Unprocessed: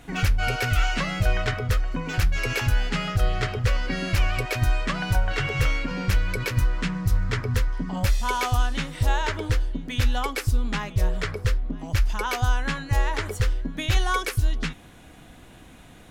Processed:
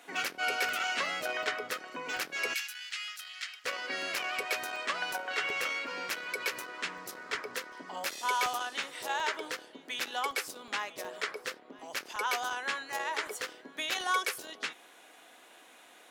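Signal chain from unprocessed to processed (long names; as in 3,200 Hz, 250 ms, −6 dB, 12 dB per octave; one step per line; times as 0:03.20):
sub-octave generator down 1 octave, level −4 dB
soft clipping −11.5 dBFS, distortion −20 dB
Bessel high-pass filter 510 Hz, order 4, from 0:02.53 2,600 Hz, from 0:03.64 570 Hz
regular buffer underruns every 0.37 s, samples 64, zero, from 0:00.69
level −2.5 dB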